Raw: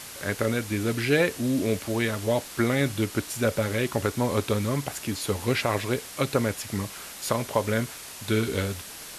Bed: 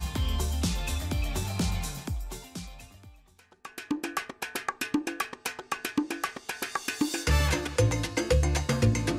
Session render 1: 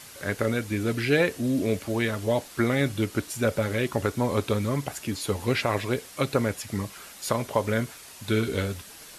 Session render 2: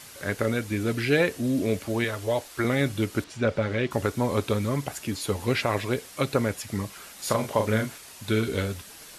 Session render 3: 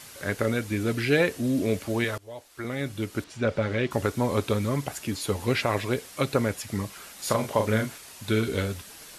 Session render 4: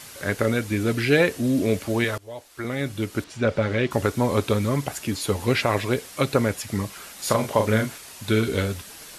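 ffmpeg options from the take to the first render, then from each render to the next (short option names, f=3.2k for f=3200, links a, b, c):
-af "afftdn=nr=6:nf=-41"
-filter_complex "[0:a]asettb=1/sr,asplit=3[a][b][c];[a]atrim=end=2.044[d];[b]atrim=start=2.04:end=2.65,asetpts=PTS-STARTPTS,afade=t=in:d=0.004:c=qsin,afade=t=out:st=0.606:d=0.004:c=qsin,equalizer=f=190:w=1.7:g=-12[e];[c]atrim=start=2.646[f];[d][e]acrossfade=d=0.004:c1=hsin:c2=qsin[g];[g][f]acrossfade=d=0.004:c1=qsin:c2=hsin,asettb=1/sr,asplit=3[h][i][j];[h]atrim=end=3.244[k];[i]atrim=start=3.24:end=3.91,asetpts=PTS-STARTPTS,afade=t=in:d=0.004:c=qsin,afade=t=out:st=0.666:d=0.004:c=qsin,lowpass=4.2k[l];[j]atrim=start=3.906[m];[k][l]acrossfade=d=0.004:c1=hsin:c2=qsin[n];[n][m]acrossfade=d=0.004:c1=qsin:c2=hsin,asettb=1/sr,asplit=3[o][p][q];[o]atrim=end=7.154[r];[p]atrim=start=7.15:end=7.98,asetpts=PTS-STARTPTS,afade=t=in:d=0.004:c=qsin,afade=t=out:st=0.826:d=0.004:c=qsin,asplit=2[s][t];[t]adelay=37,volume=-4.5dB[u];[s][u]amix=inputs=2:normalize=0,atrim=end_sample=36603[v];[q]atrim=start=7.976[w];[r][v]acrossfade=d=0.004:c1=hsin:c2=qsin[x];[x][w]acrossfade=d=0.004:c1=qsin:c2=hsin"
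-filter_complex "[0:a]asplit=2[a][b];[a]atrim=end=2.18,asetpts=PTS-STARTPTS,afade=t=out:st=2.176:d=0.004:c=hsin:silence=0.0891251[c];[b]atrim=start=2.18,asetpts=PTS-STARTPTS,afade=t=in:d=1.48:silence=0.0891251[d];[c][d]concat=n=2:v=0:a=1"
-af "volume=3.5dB"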